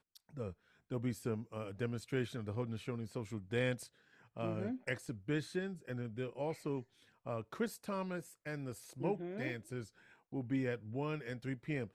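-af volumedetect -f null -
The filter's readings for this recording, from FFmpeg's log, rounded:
mean_volume: -40.8 dB
max_volume: -21.9 dB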